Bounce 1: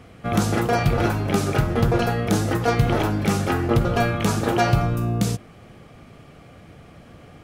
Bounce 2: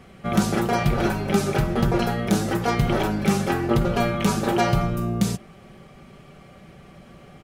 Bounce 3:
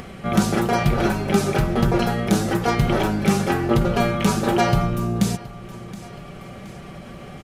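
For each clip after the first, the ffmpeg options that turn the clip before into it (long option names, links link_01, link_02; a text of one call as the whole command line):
ffmpeg -i in.wav -af "aecho=1:1:5.2:0.54,volume=-1.5dB" out.wav
ffmpeg -i in.wav -af "aecho=1:1:722|1444|2166:0.112|0.0393|0.0137,aresample=32000,aresample=44100,acompressor=mode=upward:threshold=-31dB:ratio=2.5,volume=2dB" out.wav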